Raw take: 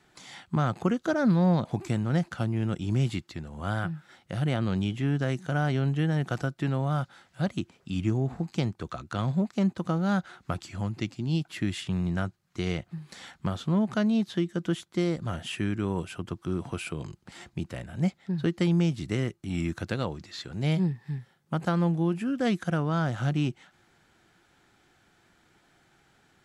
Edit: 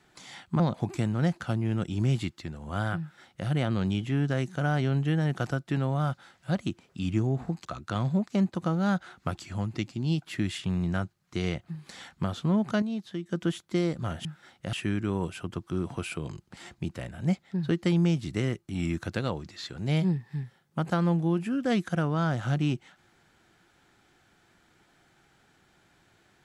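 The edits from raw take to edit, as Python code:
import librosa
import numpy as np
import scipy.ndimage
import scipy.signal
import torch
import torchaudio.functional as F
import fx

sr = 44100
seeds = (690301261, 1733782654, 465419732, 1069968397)

y = fx.edit(x, sr, fx.cut(start_s=0.6, length_s=0.91),
    fx.duplicate(start_s=3.91, length_s=0.48, to_s=15.48),
    fx.cut(start_s=8.56, length_s=0.32),
    fx.clip_gain(start_s=14.05, length_s=0.47, db=-7.5), tone=tone)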